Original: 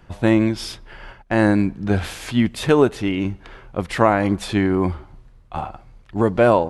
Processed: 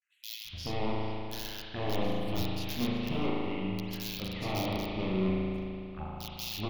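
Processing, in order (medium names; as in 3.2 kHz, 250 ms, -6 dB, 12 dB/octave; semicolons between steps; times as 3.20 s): local Wiener filter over 9 samples; band-stop 3.6 kHz, Q 8.4; gate with hold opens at -44 dBFS; amplifier tone stack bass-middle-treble 5-5-5; hum notches 60/120/180 Hz; integer overflow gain 27.5 dB; touch-sensitive phaser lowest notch 560 Hz, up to 1.6 kHz, full sweep at -40 dBFS; bands offset in time highs, lows 430 ms, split 2.8 kHz; spring tank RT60 2.6 s, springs 37 ms, chirp 65 ms, DRR -4.5 dB; trim +2.5 dB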